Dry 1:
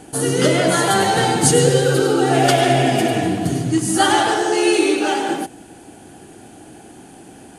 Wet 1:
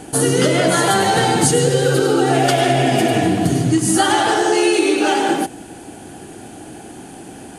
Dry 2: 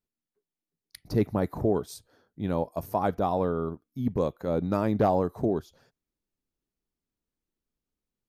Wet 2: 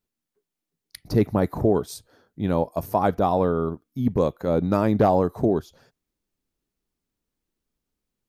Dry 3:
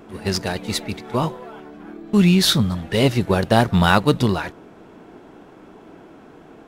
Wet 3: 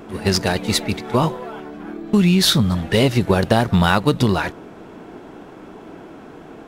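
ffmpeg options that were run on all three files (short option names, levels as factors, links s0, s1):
-af "acompressor=threshold=0.141:ratio=6,volume=1.88"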